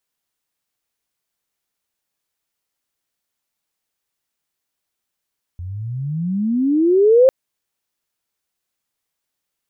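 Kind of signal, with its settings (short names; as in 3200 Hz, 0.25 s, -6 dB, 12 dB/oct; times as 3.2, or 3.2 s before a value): chirp logarithmic 85 Hz -> 540 Hz -26.5 dBFS -> -6.5 dBFS 1.70 s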